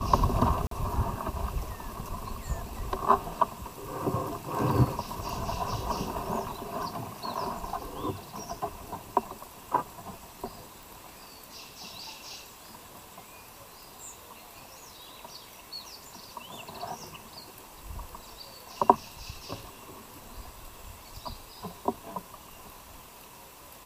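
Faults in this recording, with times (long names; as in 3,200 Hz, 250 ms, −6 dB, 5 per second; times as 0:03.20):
0:00.67–0:00.71: drop-out 43 ms
0:10.83: click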